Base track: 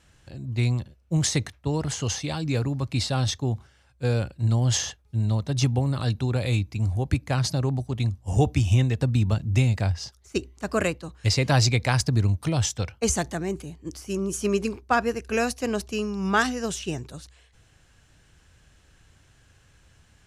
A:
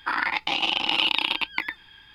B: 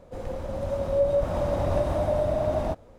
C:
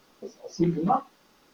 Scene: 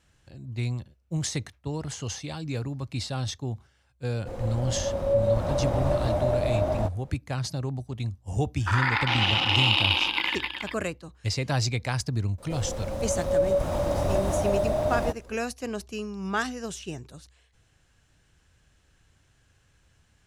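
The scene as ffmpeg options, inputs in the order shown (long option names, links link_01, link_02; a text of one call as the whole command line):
ffmpeg -i bed.wav -i cue0.wav -i cue1.wav -filter_complex "[2:a]asplit=2[link_01][link_02];[0:a]volume=-6dB[link_03];[1:a]aecho=1:1:60|144|261.6|426.2|656.7:0.794|0.631|0.501|0.398|0.316[link_04];[link_02]highshelf=frequency=4000:gain=9.5[link_05];[link_01]atrim=end=2.98,asetpts=PTS-STARTPTS,volume=-0.5dB,afade=type=in:duration=0.004:curve=hsin,afade=type=out:start_time=2.976:duration=0.004:curve=hsin,adelay=4140[link_06];[link_04]atrim=end=2.14,asetpts=PTS-STARTPTS,volume=-3dB,afade=type=in:duration=0.004:curve=hsin,afade=type=out:start_time=2.136:duration=0.004:curve=hsin,adelay=8600[link_07];[link_05]atrim=end=2.98,asetpts=PTS-STARTPTS,volume=-0.5dB,afade=type=in:duration=0.004:curve=hsin,afade=type=out:start_time=2.976:duration=0.004:curve=hsin,adelay=12380[link_08];[link_03][link_06][link_07][link_08]amix=inputs=4:normalize=0" out.wav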